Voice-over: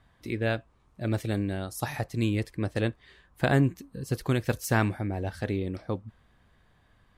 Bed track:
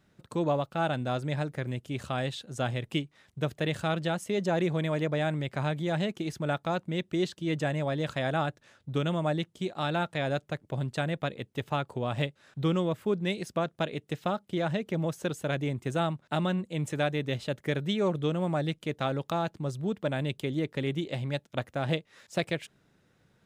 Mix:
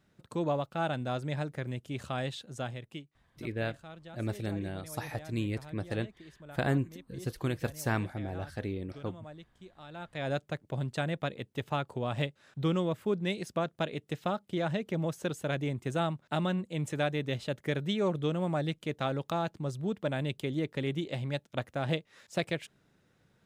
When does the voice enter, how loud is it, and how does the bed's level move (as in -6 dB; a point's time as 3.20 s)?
3.15 s, -6.0 dB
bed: 2.47 s -3 dB
3.25 s -19 dB
9.87 s -19 dB
10.30 s -2 dB